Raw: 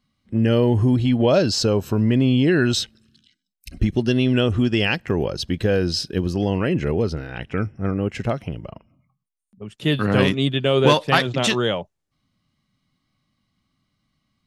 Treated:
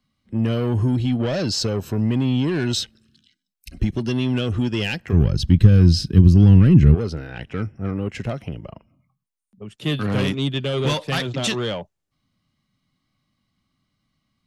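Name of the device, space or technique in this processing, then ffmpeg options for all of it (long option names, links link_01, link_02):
one-band saturation: -filter_complex "[0:a]acrossover=split=220|3100[link_01][link_02][link_03];[link_02]asoftclip=type=tanh:threshold=-22dB[link_04];[link_01][link_04][link_03]amix=inputs=3:normalize=0,asplit=3[link_05][link_06][link_07];[link_05]afade=type=out:start_time=5.12:duration=0.02[link_08];[link_06]asubboost=boost=11.5:cutoff=190,afade=type=in:start_time=5.12:duration=0.02,afade=type=out:start_time=6.94:duration=0.02[link_09];[link_07]afade=type=in:start_time=6.94:duration=0.02[link_10];[link_08][link_09][link_10]amix=inputs=3:normalize=0,volume=-1dB"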